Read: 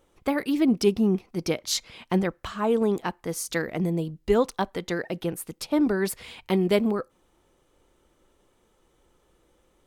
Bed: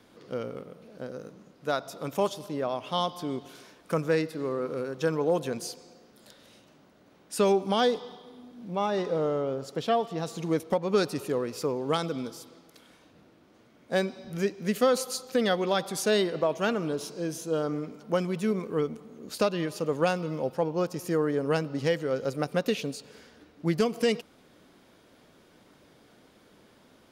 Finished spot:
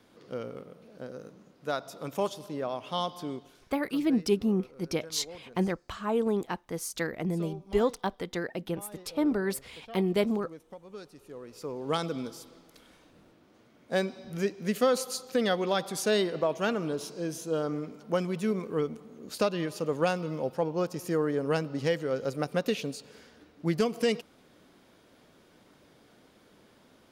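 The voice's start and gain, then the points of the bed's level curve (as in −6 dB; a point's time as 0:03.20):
3.45 s, −4.5 dB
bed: 0:03.28 −3 dB
0:03.88 −20 dB
0:11.17 −20 dB
0:11.96 −1.5 dB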